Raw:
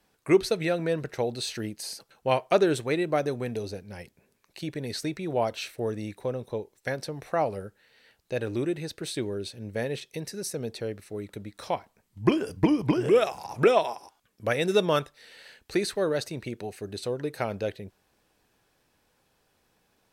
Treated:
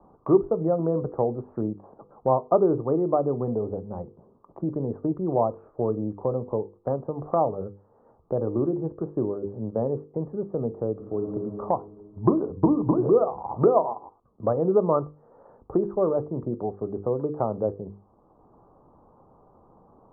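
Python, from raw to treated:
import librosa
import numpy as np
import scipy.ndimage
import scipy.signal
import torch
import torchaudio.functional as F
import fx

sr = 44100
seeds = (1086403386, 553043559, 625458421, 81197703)

y = fx.reverb_throw(x, sr, start_s=10.91, length_s=0.44, rt60_s=2.4, drr_db=2.5)
y = scipy.signal.sosfilt(scipy.signal.cheby1(6, 1.0, 1200.0, 'lowpass', fs=sr, output='sos'), y)
y = fx.hum_notches(y, sr, base_hz=50, count=10)
y = fx.band_squash(y, sr, depth_pct=40)
y = y * librosa.db_to_amplitude(5.0)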